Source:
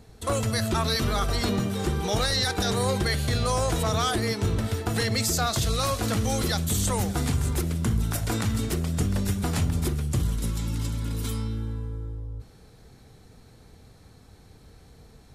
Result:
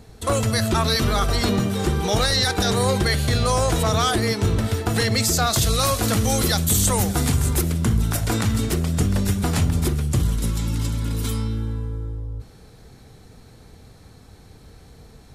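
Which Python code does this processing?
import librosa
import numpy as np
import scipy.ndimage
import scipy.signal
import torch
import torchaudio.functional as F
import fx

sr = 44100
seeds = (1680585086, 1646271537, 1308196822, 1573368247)

y = fx.high_shelf(x, sr, hz=8400.0, db=7.5, at=(5.5, 7.72))
y = y * 10.0 ** (5.0 / 20.0)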